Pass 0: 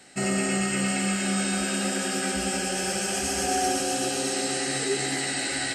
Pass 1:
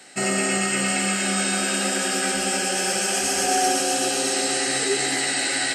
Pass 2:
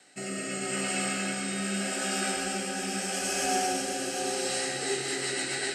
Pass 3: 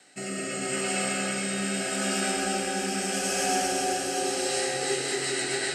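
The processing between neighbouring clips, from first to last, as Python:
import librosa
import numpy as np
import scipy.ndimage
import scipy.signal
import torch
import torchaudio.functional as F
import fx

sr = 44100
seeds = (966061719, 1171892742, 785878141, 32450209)

y1 = fx.highpass(x, sr, hz=350.0, slope=6)
y1 = F.gain(torch.from_numpy(y1), 5.5).numpy()
y2 = fx.rotary_switch(y1, sr, hz=0.8, then_hz=8.0, switch_at_s=4.43)
y2 = y2 + 10.0 ** (-8.0 / 20.0) * np.pad(y2, (int(760 * sr / 1000.0), 0))[:len(y2)]
y2 = fx.room_shoebox(y2, sr, seeds[0], volume_m3=200.0, walls='hard', distance_m=0.39)
y2 = F.gain(torch.from_numpy(y2), -8.0).numpy()
y3 = fx.echo_alternate(y2, sr, ms=209, hz=1000.0, feedback_pct=54, wet_db=-3.5)
y3 = F.gain(torch.from_numpy(y3), 1.5).numpy()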